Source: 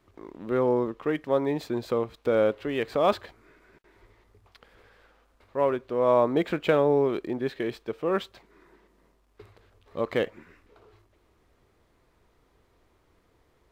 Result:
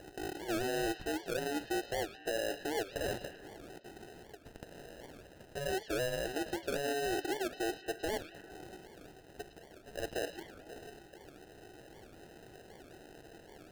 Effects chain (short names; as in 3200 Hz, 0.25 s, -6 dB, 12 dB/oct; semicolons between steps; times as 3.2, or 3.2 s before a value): median filter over 15 samples; Chebyshev high-pass 290 Hz, order 8; bell 4000 Hz -8.5 dB 0.82 oct; notch 510 Hz, Q 14; reverse; compressor 6:1, threshold -34 dBFS, peak gain reduction 15 dB; reverse; limiter -33.5 dBFS, peak gain reduction 10 dB; upward compressor, threshold -48 dBFS; sample-and-hold 39×; on a send: delay with a stepping band-pass 0.109 s, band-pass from 3700 Hz, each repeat -0.7 oct, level -9 dB; on the sum: record warp 78 rpm, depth 250 cents; gain +5.5 dB